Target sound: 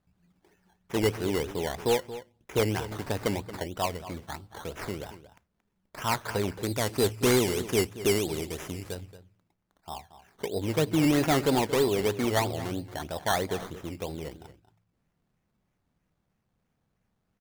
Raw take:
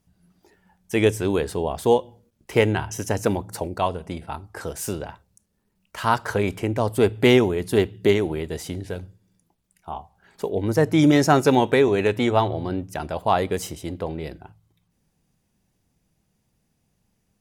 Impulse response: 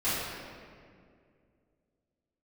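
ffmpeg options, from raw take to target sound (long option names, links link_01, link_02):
-filter_complex "[0:a]acrusher=samples=14:mix=1:aa=0.000001:lfo=1:lforange=8.4:lforate=3.1,asettb=1/sr,asplit=3[link_01][link_02][link_03];[link_01]atrim=end=6.634[link_04];[link_02]atrim=start=6.63:end=8.95,asetpts=PTS-STARTPTS,afade=type=in:duration=0.004:curve=qsin,afade=type=out:start_time=2.316:duration=0.004:curve=qsin,equalizer=frequency=9500:width=0.39:gain=8.5[link_05];[link_03]atrim=start=8.946[link_06];[link_04][link_05]acrossfade=duration=0.004:curve1=hsin:curve2=qsin[link_07];[link_07][link_06]acrossfade=duration=0.004:curve1=qsin:curve2=hsin,asoftclip=type=hard:threshold=-11dB,asplit=2[link_08][link_09];[link_09]adelay=227.4,volume=-14dB,highshelf=frequency=4000:gain=-5.12[link_10];[link_08][link_10]amix=inputs=2:normalize=0,volume=-6.5dB"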